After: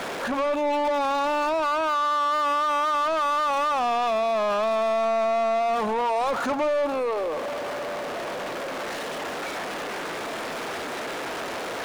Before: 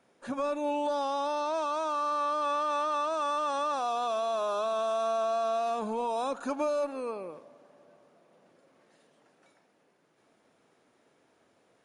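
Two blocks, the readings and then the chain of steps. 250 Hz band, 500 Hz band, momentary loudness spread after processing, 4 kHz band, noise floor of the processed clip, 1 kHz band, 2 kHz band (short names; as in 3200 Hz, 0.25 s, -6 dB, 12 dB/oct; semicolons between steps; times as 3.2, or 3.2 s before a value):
+6.5 dB, +6.5 dB, 8 LU, +9.5 dB, -32 dBFS, +7.0 dB, +14.0 dB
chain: zero-crossing step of -37 dBFS; overdrive pedal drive 20 dB, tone 2300 Hz, clips at -21.5 dBFS; gain +3 dB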